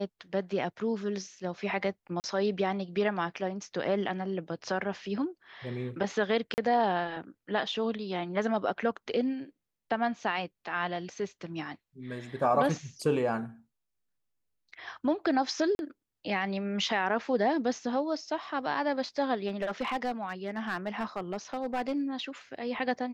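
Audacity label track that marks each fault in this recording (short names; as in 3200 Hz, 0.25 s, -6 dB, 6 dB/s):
2.200000	2.240000	gap 39 ms
6.540000	6.580000	gap 39 ms
15.750000	15.790000	gap 41 ms
19.480000	22.010000	clipped -26 dBFS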